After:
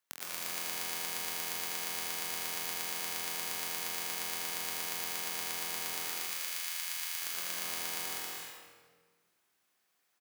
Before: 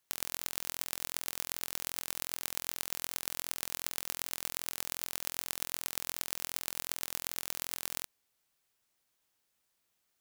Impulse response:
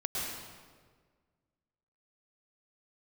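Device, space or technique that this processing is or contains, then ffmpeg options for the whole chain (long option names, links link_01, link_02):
stadium PA: -filter_complex "[0:a]asettb=1/sr,asplit=3[link_01][link_02][link_03];[link_01]atrim=end=5.944[link_04];[link_02]atrim=start=5.94:end=7.2,asetpts=PTS-STARTPTS,afade=type=in:duration=0.004:curve=qsin,afade=type=out:start_time=1.256:duration=0.004:curve=qsin,highpass=1400[link_05];[link_03]atrim=start=7.196[link_06];[link_04][link_05]acrossfade=duration=0.004:curve1=hsin:curve2=qsin[link_07];[link_07][link_06]acrossfade=duration=0.004:curve1=qsin:curve2=hsin,highpass=170,equalizer=frequency=1500:width_type=o:width=1.6:gain=5,aecho=1:1:198.3|271.1:0.708|0.631[link_08];[1:a]atrim=start_sample=2205[link_09];[link_08][link_09]afir=irnorm=-1:irlink=0,aecho=1:1:70|83:0.141|0.237,volume=-6dB"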